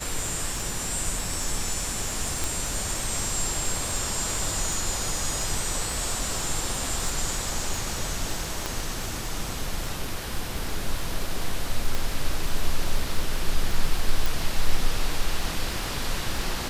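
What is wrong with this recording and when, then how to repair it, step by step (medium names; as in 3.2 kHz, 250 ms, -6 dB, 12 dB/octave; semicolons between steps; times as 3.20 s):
crackle 24 per s -27 dBFS
2.44 s: pop
8.66 s: pop -12 dBFS
11.95 s: pop
14.26 s: pop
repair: de-click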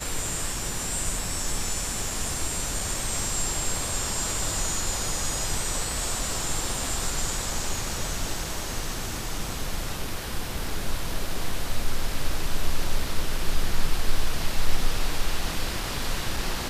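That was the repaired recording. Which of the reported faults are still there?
8.66 s: pop
11.95 s: pop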